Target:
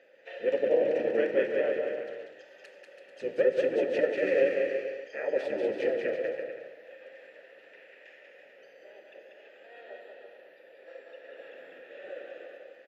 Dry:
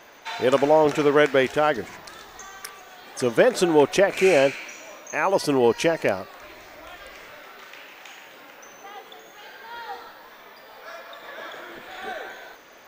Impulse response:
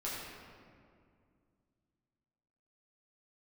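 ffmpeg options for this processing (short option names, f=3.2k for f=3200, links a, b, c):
-filter_complex "[0:a]asplit=4[a][b][c][d];[b]asetrate=22050,aresample=44100,atempo=2,volume=-3dB[e];[c]asetrate=33038,aresample=44100,atempo=1.33484,volume=-1dB[f];[d]asetrate=35002,aresample=44100,atempo=1.25992,volume=-1dB[g];[a][e][f][g]amix=inputs=4:normalize=0,asplit=3[h][i][j];[h]bandpass=f=530:t=q:w=8,volume=0dB[k];[i]bandpass=f=1.84k:t=q:w=8,volume=-6dB[l];[j]bandpass=f=2.48k:t=q:w=8,volume=-9dB[m];[k][l][m]amix=inputs=3:normalize=0,aecho=1:1:190|332.5|439.4|519.5|579.6:0.631|0.398|0.251|0.158|0.1,asplit=2[n][o];[1:a]atrim=start_sample=2205,atrim=end_sample=6174,highshelf=f=11k:g=11[p];[o][p]afir=irnorm=-1:irlink=0,volume=-9dB[q];[n][q]amix=inputs=2:normalize=0,volume=-7dB"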